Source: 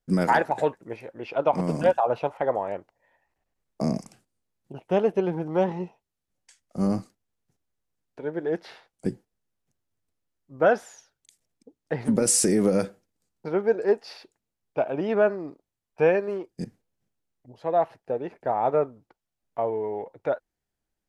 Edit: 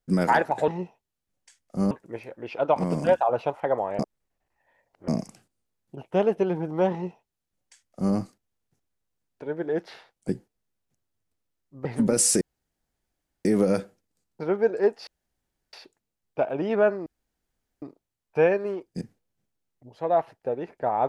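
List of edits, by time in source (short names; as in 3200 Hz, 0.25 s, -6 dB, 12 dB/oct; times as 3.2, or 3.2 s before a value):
2.76–3.85 reverse
5.69–6.92 copy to 0.68
10.62–11.94 cut
12.5 insert room tone 1.04 s
14.12 insert room tone 0.66 s
15.45 insert room tone 0.76 s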